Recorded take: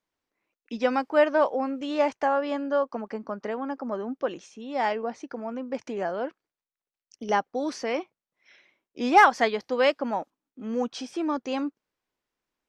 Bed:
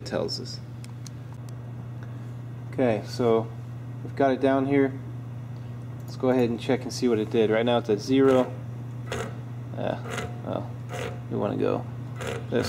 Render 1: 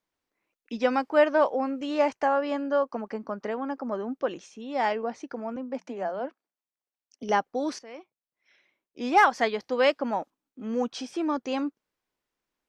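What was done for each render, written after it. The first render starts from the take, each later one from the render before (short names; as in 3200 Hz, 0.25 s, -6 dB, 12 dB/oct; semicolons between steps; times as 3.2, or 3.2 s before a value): 1.68–3.11 notch 3500 Hz, Q 14; 5.56–7.23 rippled Chebyshev high-pass 180 Hz, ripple 6 dB; 7.79–9.91 fade in, from -18 dB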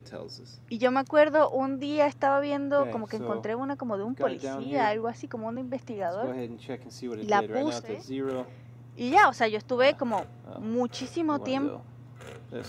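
add bed -12.5 dB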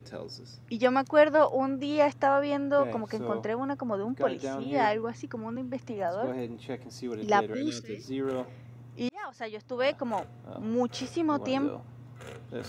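4.98–5.83 bell 670 Hz -11.5 dB 0.37 oct; 7.54–8.03 Butterworth band-stop 830 Hz, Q 0.66; 9.09–10.52 fade in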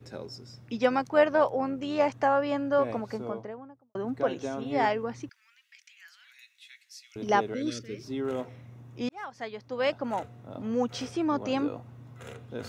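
0.89–2.14 AM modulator 91 Hz, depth 20%; 2.91–3.95 studio fade out; 5.29–7.16 steep high-pass 1900 Hz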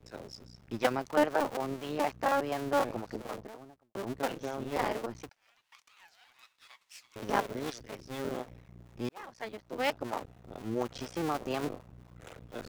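cycle switcher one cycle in 2, muted; harmonic tremolo 4.1 Hz, depth 50%, crossover 500 Hz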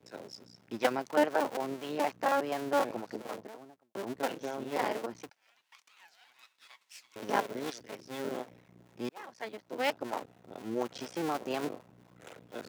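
HPF 190 Hz 12 dB/oct; notch 1200 Hz, Q 16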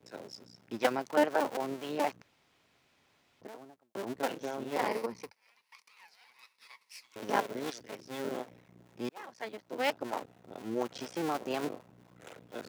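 2.22–3.41 room tone; 4.87–7.04 ripple EQ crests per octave 0.88, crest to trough 8 dB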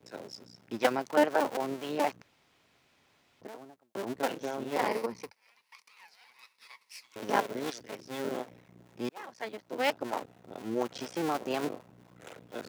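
gain +2 dB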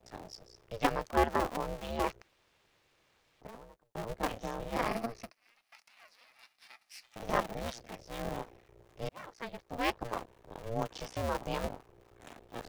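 ring modulator 230 Hz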